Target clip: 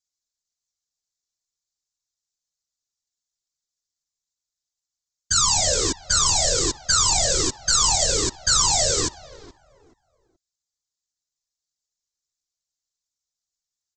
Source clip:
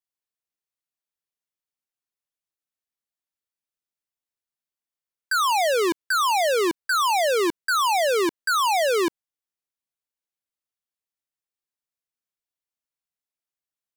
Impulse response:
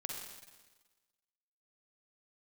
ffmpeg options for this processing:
-filter_complex "[0:a]asplit=2[a][b];[b]adelay=426,lowpass=f=950:p=1,volume=-17dB,asplit=2[c][d];[d]adelay=426,lowpass=f=950:p=1,volume=0.29,asplit=2[e][f];[f]adelay=426,lowpass=f=950:p=1,volume=0.29[g];[a][c][e][g]amix=inputs=4:normalize=0,aresample=16000,aeval=exprs='max(val(0),0)':c=same,aresample=44100,aexciter=amount=10.6:drive=2.2:freq=3.9k,afftfilt=real='hypot(re,im)*cos(2*PI*random(0))':imag='hypot(re,im)*sin(2*PI*random(1))':win_size=512:overlap=0.75,volume=5.5dB"

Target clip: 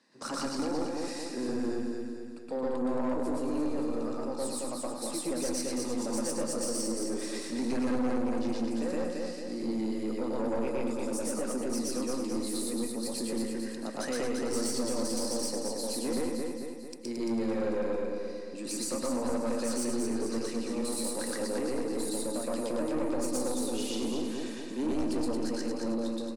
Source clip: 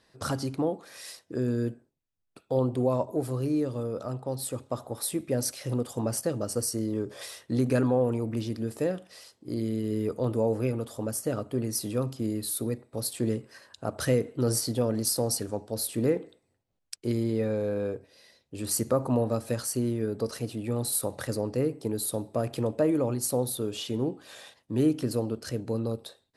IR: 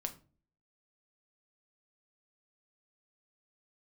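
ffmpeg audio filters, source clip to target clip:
-filter_complex "[0:a]acrossover=split=310[a][b];[a]acompressor=threshold=-44dB:ratio=6[c];[b]alimiter=limit=-20.5dB:level=0:latency=1:release=300[d];[c][d]amix=inputs=2:normalize=0,highpass=f=190:w=0.5412,highpass=f=190:w=1.3066,equalizer=f=250:t=q:w=4:g=7,equalizer=f=430:t=q:w=4:g=-5,equalizer=f=680:t=q:w=4:g=-6,equalizer=f=1.4k:t=q:w=4:g=-4,equalizer=f=3.3k:t=q:w=4:g=-8,lowpass=f=9k:w=0.5412,lowpass=f=9k:w=1.3066,aeval=exprs='0.119*(cos(1*acos(clip(val(0)/0.119,-1,1)))-cos(1*PI/2))+0.0237*(cos(2*acos(clip(val(0)/0.119,-1,1)))-cos(2*PI/2))':c=same,aecho=1:1:223|446|669|892|1115|1338|1561:0.596|0.31|0.161|0.0838|0.0436|0.0226|0.0118,asplit=2[e][f];[1:a]atrim=start_sample=2205,adelay=119[g];[f][g]afir=irnorm=-1:irlink=0,volume=3.5dB[h];[e][h]amix=inputs=2:normalize=0,asoftclip=type=tanh:threshold=-23.5dB,volume=-1.5dB"

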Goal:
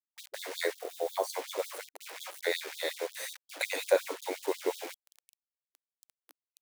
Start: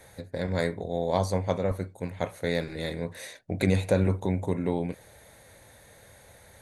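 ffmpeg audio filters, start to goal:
-filter_complex "[0:a]acrusher=bits=6:mix=0:aa=0.000001,asettb=1/sr,asplit=3[a][b][c];[a]atrim=end=0.734[d];[b]atrim=start=0.73:end=1.3,asetpts=PTS-STARTPTS,afade=t=in:d=0.004:c=qsin,afade=t=out:st=0.566:d=0.004:c=qsin,equalizer=f=3.2k:w=0.35:g=-7[e];[c]atrim=start=1.296[f];[d][e]acrossfade=d=0.004:c1=hsin:c2=qsin[g];[g][f]acrossfade=d=0.004:c1=qsin:c2=hsin,afftfilt=real='re*gte(b*sr/1024,280*pow(3300/280,0.5+0.5*sin(2*PI*5.5*pts/sr)))':imag='im*gte(b*sr/1024,280*pow(3300/280,0.5+0.5*sin(2*PI*5.5*pts/sr)))':win_size=1024:overlap=0.75,volume=1.5dB"

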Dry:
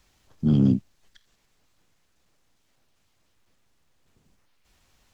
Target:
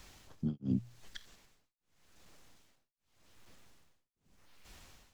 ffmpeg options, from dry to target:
-af "bandreject=f=60:t=h:w=6,bandreject=f=120:t=h:w=6,tremolo=f=0.85:d=1,volume=8.5dB"

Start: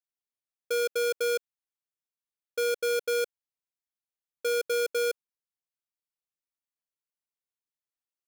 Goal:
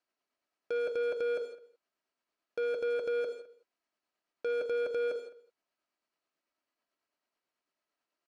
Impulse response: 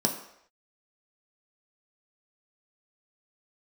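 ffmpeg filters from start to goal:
-filter_complex "[0:a]asplit=2[a][b];[1:a]atrim=start_sample=2205,atrim=end_sample=6174,asetrate=33957,aresample=44100[c];[b][c]afir=irnorm=-1:irlink=0,volume=-21dB[d];[a][d]amix=inputs=2:normalize=0,acontrast=42,tremolo=f=9.1:d=0.31,acrossover=split=2900[e][f];[f]acompressor=threshold=-46dB:ratio=4:attack=1:release=60[g];[e][g]amix=inputs=2:normalize=0,lowpass=7.5k,asplit=2[h][i];[i]highpass=f=720:p=1,volume=21dB,asoftclip=type=tanh:threshold=-15dB[j];[h][j]amix=inputs=2:normalize=0,lowpass=f=1k:p=1,volume=-6dB,aecho=1:1:3.1:0.36,asoftclip=type=tanh:threshold=-27dB,asplit=2[k][l];[l]adelay=209.9,volume=-20dB,highshelf=f=4k:g=-4.72[m];[k][m]amix=inputs=2:normalize=0,volume=-2.5dB"

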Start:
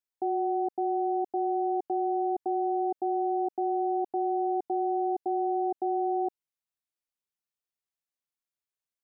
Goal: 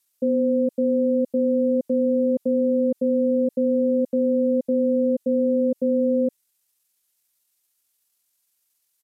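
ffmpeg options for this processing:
-af "asetrate=30296,aresample=44100,atempo=1.45565,crystalizer=i=4.5:c=0,volume=7.5dB"

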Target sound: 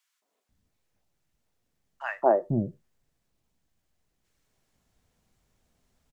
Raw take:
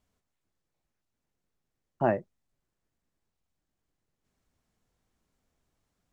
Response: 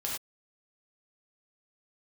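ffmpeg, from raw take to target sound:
-filter_complex "[0:a]acrossover=split=330|1200[a][b][c];[b]adelay=220[d];[a]adelay=490[e];[e][d][c]amix=inputs=3:normalize=0,asplit=2[f][g];[1:a]atrim=start_sample=2205,asetrate=48510,aresample=44100[h];[g][h]afir=irnorm=-1:irlink=0,volume=-23.5dB[i];[f][i]amix=inputs=2:normalize=0,volume=6.5dB"

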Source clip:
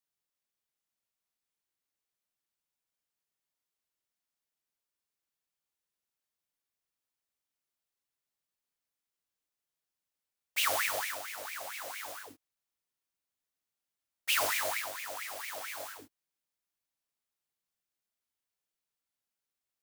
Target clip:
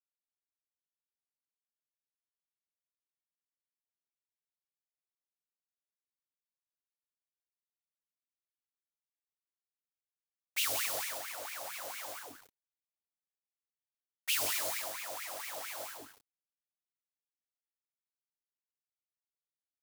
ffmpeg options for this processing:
-filter_complex "[0:a]acrossover=split=430|3000[a][b][c];[b]acompressor=threshold=-40dB:ratio=6[d];[a][d][c]amix=inputs=3:normalize=0,asplit=2[e][f];[f]aecho=0:1:178:0.335[g];[e][g]amix=inputs=2:normalize=0,adynamicequalizer=threshold=0.00316:dfrequency=1800:dqfactor=1.1:tfrequency=1800:tqfactor=1.1:attack=5:release=100:ratio=0.375:range=2:mode=cutabove:tftype=bell,aeval=exprs='val(0)*gte(abs(val(0)),0.002)':c=same"

